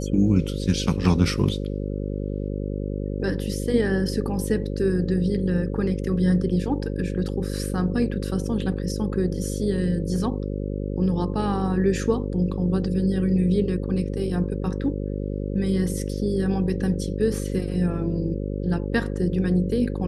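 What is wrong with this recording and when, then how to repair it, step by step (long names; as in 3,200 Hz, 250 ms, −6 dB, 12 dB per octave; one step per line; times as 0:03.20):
mains buzz 50 Hz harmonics 11 −28 dBFS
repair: hum removal 50 Hz, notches 11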